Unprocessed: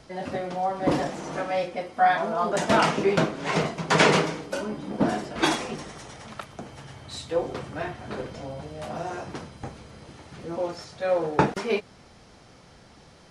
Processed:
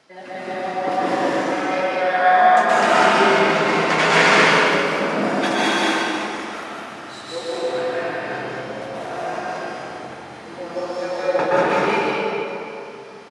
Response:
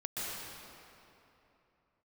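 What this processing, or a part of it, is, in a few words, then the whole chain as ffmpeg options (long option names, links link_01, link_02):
stadium PA: -filter_complex "[0:a]highpass=230,equalizer=frequency=2000:width_type=o:width=2:gain=6,aecho=1:1:151.6|198.3|259.5:0.316|0.891|0.562[link_01];[1:a]atrim=start_sample=2205[link_02];[link_01][link_02]afir=irnorm=-1:irlink=0,volume=-2dB"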